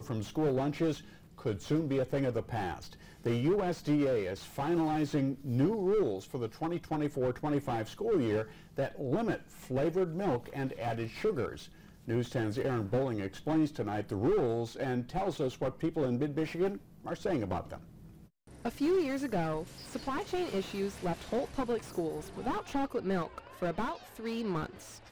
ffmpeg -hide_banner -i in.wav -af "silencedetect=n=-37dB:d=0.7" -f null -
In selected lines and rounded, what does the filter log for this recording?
silence_start: 17.76
silence_end: 18.65 | silence_duration: 0.89